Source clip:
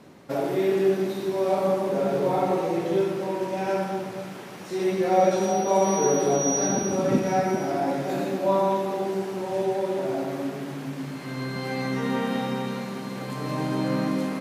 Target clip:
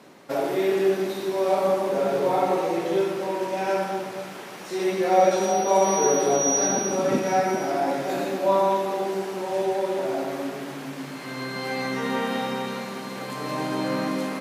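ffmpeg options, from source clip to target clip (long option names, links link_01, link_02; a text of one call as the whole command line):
ffmpeg -i in.wav -af "highpass=frequency=410:poles=1,volume=3.5dB" out.wav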